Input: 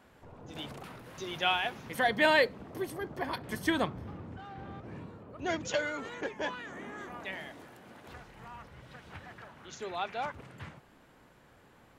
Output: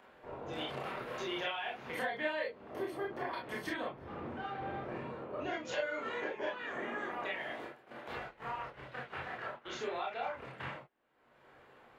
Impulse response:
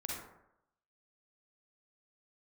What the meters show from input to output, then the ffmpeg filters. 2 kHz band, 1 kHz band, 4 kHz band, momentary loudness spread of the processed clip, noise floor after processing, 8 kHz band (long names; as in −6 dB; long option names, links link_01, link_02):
−5.5 dB, −4.0 dB, −7.0 dB, 8 LU, −64 dBFS, −9.0 dB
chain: -filter_complex "[0:a]agate=range=-36dB:threshold=-49dB:ratio=16:detection=peak,acompressor=mode=upward:threshold=-39dB:ratio=2.5,acrossover=split=300 3700:gain=0.2 1 0.224[link_01][link_02][link_03];[link_01][link_02][link_03]amix=inputs=3:normalize=0,acompressor=threshold=-42dB:ratio=6[link_04];[1:a]atrim=start_sample=2205,afade=type=out:start_time=0.19:duration=0.01,atrim=end_sample=8820,asetrate=83790,aresample=44100[link_05];[link_04][link_05]afir=irnorm=-1:irlink=0,volume=12dB"